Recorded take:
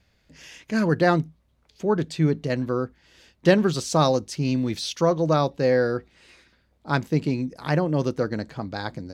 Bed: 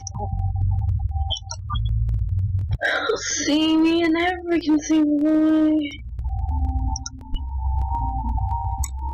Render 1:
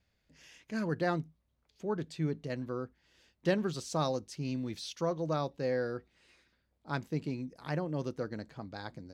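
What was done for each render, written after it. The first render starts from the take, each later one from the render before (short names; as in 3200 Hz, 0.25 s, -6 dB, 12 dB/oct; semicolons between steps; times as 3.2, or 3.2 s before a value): gain -12 dB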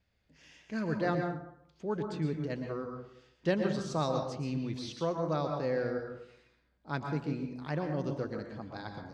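air absorption 66 m; plate-style reverb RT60 0.71 s, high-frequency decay 0.5×, pre-delay 0.105 s, DRR 4 dB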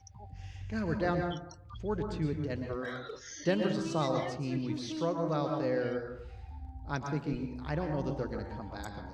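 add bed -21.5 dB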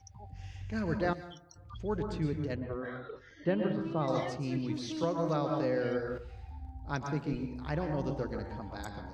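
1.13–1.56 pre-emphasis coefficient 0.8; 2.55–4.08 air absorption 450 m; 5.03–6.18 three-band squash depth 100%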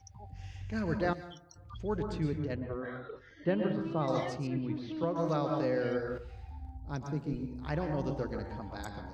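2.38–3.48 air absorption 80 m; 4.47–5.16 air absorption 340 m; 6.77–7.63 bell 1900 Hz -9.5 dB 3 oct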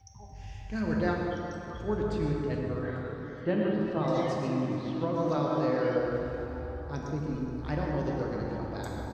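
feedback echo 0.422 s, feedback 59%, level -17 dB; plate-style reverb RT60 3.6 s, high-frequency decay 0.55×, DRR 0 dB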